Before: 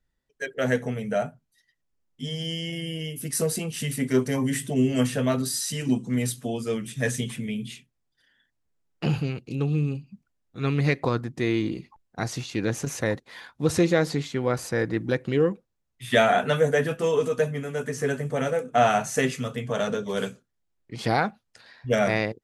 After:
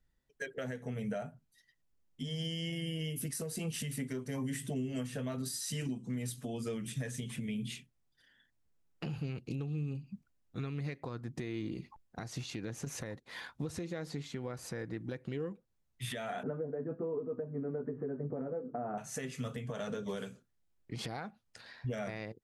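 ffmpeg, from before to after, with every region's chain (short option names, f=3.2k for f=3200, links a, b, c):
-filter_complex "[0:a]asettb=1/sr,asplit=3[a][b][c];[a]atrim=end=16.434[d];[b]atrim=start=16.43:end=18.98,asetpts=PTS-STARTPTS,afade=t=in:d=0.004:c=qsin,afade=t=out:st=2.546:d=0.004:c=qsin,lowpass=f=1.3k:w=0.5412,lowpass=f=1.3k:w=1.3066,equalizer=f=320:w=1:g=13[e];[c]atrim=start=18.976[f];[d][e]acrossfade=d=0.004:c1=hsin:c2=qsin[g];[g][f]acrossfade=d=0.004:c1=qsin:c2=hsin,bass=f=250:g=3,treble=f=4k:g=0,acompressor=threshold=-31dB:ratio=6,alimiter=level_in=2.5dB:limit=-24dB:level=0:latency=1:release=244,volume=-2.5dB,volume=-2dB"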